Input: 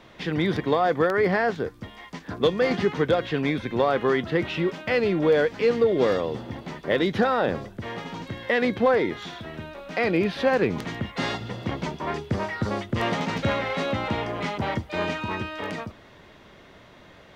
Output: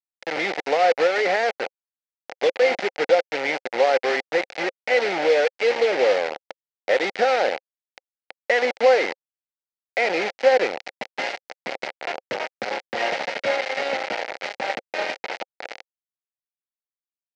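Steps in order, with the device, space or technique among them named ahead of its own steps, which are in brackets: 14.33–14.99 HPF 69 Hz 6 dB/oct; hand-held game console (bit-crush 4-bit; speaker cabinet 490–4800 Hz, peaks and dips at 530 Hz +8 dB, 770 Hz +7 dB, 1100 Hz -10 dB, 2100 Hz +6 dB, 3500 Hz -5 dB)

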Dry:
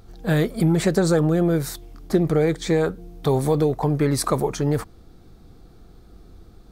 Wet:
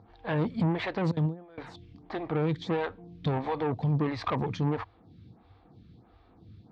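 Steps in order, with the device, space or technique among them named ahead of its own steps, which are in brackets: 1.11–1.58 gate with hold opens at -10 dBFS; vibe pedal into a guitar amplifier (photocell phaser 1.5 Hz; tube stage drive 22 dB, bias 0.4; speaker cabinet 94–3700 Hz, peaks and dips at 100 Hz +10 dB, 390 Hz -10 dB, 570 Hz -5 dB, 930 Hz +4 dB, 1400 Hz -6 dB); gain +1.5 dB

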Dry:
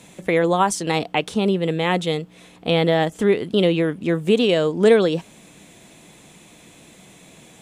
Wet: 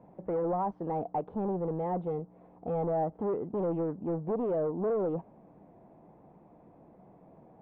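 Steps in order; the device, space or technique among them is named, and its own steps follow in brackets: overdriven synthesiser ladder filter (soft clip -20.5 dBFS, distortion -7 dB; ladder low-pass 1000 Hz, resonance 40%)

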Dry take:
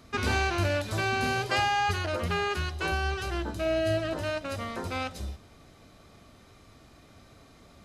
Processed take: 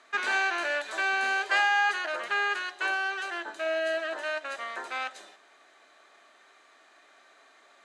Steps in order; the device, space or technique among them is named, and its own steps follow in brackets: phone speaker on a table (speaker cabinet 440–8600 Hz, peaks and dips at 490 Hz -9 dB, 1700 Hz +9 dB, 5200 Hz -9 dB)

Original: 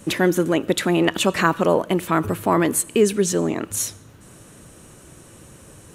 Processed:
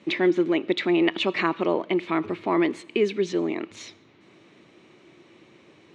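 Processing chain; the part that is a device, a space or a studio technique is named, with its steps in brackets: kitchen radio (speaker cabinet 220–4500 Hz, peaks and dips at 350 Hz +7 dB, 510 Hz -4 dB, 1500 Hz -6 dB, 2200 Hz +10 dB, 3800 Hz +4 dB); gain -6 dB

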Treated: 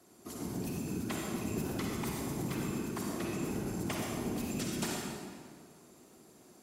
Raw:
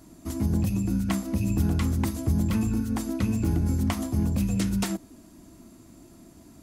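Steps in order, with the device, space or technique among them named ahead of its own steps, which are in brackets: whispering ghost (whisperiser; HPF 490 Hz 6 dB/oct; reverb RT60 1.9 s, pre-delay 45 ms, DRR -2 dB); gain -6.5 dB

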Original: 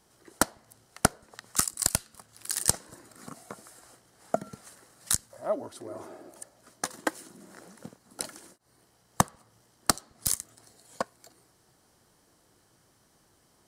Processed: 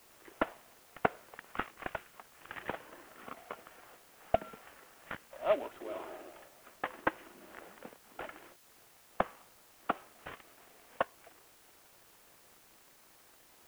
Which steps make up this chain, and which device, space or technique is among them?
army field radio (BPF 400–2900 Hz; CVSD 16 kbps; white noise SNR 21 dB); gain +1.5 dB

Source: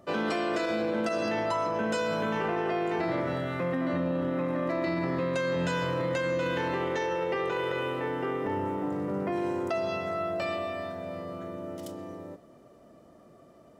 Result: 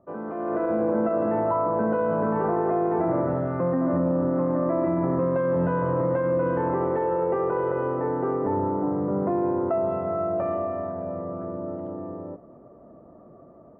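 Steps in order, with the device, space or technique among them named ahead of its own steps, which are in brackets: action camera in a waterproof case (LPF 1200 Hz 24 dB/oct; AGC gain up to 11 dB; gain -5 dB; AAC 48 kbps 44100 Hz)

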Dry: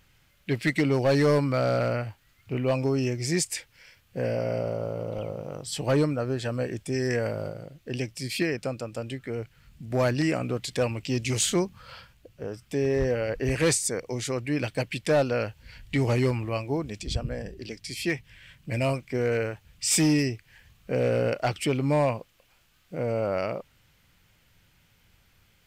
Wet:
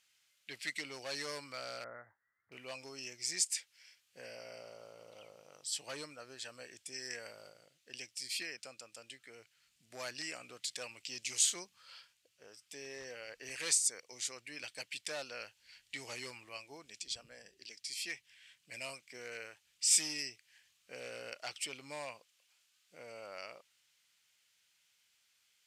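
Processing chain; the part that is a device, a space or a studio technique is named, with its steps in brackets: 1.84–2.52 Chebyshev low-pass 2000 Hz, order 8; piezo pickup straight into a mixer (LPF 7700 Hz 12 dB/oct; differentiator)

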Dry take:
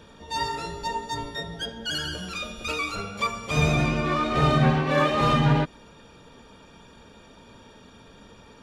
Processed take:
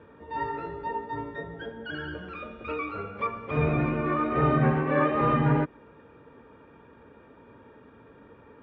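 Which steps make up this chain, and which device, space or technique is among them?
bass cabinet (speaker cabinet 73–2100 Hz, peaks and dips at 190 Hz -6 dB, 300 Hz +4 dB, 450 Hz +4 dB, 700 Hz -4 dB); gain -2 dB

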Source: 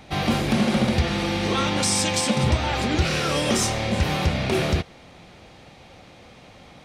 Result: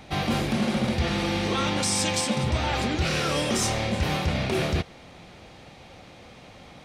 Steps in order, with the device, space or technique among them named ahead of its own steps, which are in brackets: compression on the reversed sound (reverse; compressor, threshold -21 dBFS, peak gain reduction 6.5 dB; reverse)

